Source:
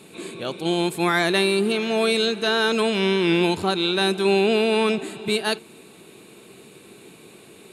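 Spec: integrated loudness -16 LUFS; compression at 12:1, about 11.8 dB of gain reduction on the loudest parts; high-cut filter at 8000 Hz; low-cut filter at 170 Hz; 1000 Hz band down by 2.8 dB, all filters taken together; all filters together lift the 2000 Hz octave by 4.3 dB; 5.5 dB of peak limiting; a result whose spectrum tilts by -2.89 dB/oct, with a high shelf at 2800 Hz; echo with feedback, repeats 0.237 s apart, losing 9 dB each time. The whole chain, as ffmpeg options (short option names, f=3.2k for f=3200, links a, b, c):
-af "highpass=170,lowpass=8k,equalizer=f=1k:t=o:g=-6,equalizer=f=2k:t=o:g=3.5,highshelf=f=2.8k:g=8.5,acompressor=threshold=-26dB:ratio=12,alimiter=limit=-21dB:level=0:latency=1,aecho=1:1:237|474|711|948:0.355|0.124|0.0435|0.0152,volume=14dB"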